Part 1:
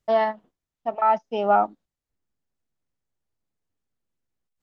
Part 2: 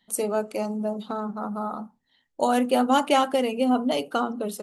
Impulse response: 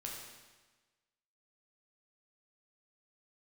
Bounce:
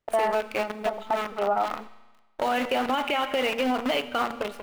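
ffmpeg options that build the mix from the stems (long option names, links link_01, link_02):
-filter_complex "[0:a]volume=2.5dB[link_01];[1:a]equalizer=frequency=2400:width_type=o:width=1.2:gain=12,acrusher=bits=5:dc=4:mix=0:aa=0.000001,volume=-1dB,asplit=3[link_02][link_03][link_04];[link_03]volume=-10.5dB[link_05];[link_04]apad=whole_len=203818[link_06];[link_01][link_06]sidechaingate=range=-33dB:threshold=-32dB:ratio=16:detection=peak[link_07];[2:a]atrim=start_sample=2205[link_08];[link_05][link_08]afir=irnorm=-1:irlink=0[link_09];[link_07][link_02][link_09]amix=inputs=3:normalize=0,bass=frequency=250:gain=-8,treble=frequency=4000:gain=-13,alimiter=limit=-15.5dB:level=0:latency=1:release=73"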